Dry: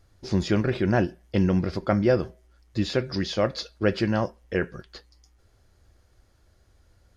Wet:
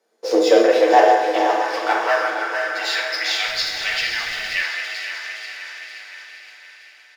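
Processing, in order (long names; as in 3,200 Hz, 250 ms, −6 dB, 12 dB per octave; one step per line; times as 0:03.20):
feedback delay that plays each chunk backwards 260 ms, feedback 77%, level −9 dB
leveller curve on the samples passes 2
high-pass filter sweep 300 Hz → 2,100 Hz, 0:00.11–0:03.37
repeating echo 463 ms, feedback 58%, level −10.5 dB
convolution reverb RT60 1.0 s, pre-delay 5 ms, DRR −1 dB
frequency shifter +130 Hz
0:03.47–0:04.61: background noise pink −45 dBFS
level −1.5 dB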